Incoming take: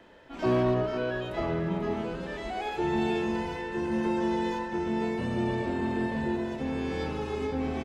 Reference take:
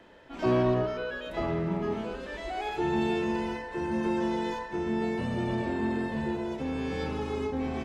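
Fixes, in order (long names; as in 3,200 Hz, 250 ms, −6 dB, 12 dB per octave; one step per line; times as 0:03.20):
clipped peaks rebuilt −18.5 dBFS
echo removal 490 ms −9.5 dB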